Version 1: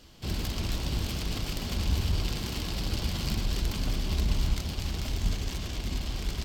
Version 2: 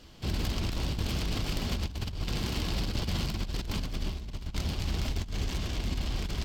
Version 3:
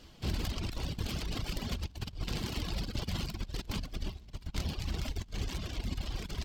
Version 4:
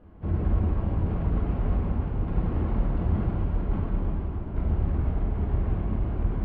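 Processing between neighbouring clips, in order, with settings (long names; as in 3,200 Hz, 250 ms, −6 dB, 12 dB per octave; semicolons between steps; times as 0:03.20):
high-shelf EQ 6,000 Hz −6 dB; compressor whose output falls as the input rises −30 dBFS, ratio −0.5
reverb reduction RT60 1.6 s; level −1.5 dB
Bessel low-pass filter 1,000 Hz, order 4; dense smooth reverb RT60 4.7 s, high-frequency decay 0.95×, DRR −6.5 dB; level +3 dB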